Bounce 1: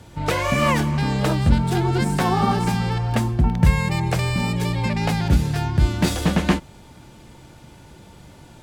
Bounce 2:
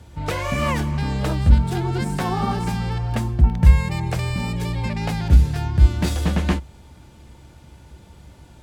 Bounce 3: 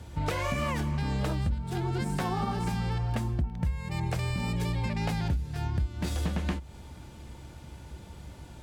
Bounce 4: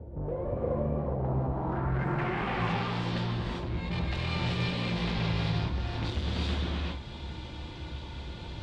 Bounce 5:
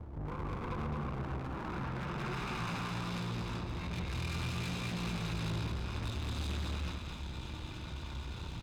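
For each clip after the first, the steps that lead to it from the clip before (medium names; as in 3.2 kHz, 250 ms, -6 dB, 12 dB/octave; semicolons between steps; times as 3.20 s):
peaking EQ 66 Hz +13.5 dB 0.64 oct; trim -4 dB
compression 12:1, threshold -26 dBFS, peak gain reduction 20.5 dB
hard clipper -34 dBFS, distortion -7 dB; low-pass sweep 520 Hz -> 3.7 kHz, 0.83–2.75 s; gated-style reverb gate 420 ms rising, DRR -4 dB
comb filter that takes the minimum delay 0.8 ms; valve stage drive 36 dB, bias 0.45; on a send: delay 216 ms -5 dB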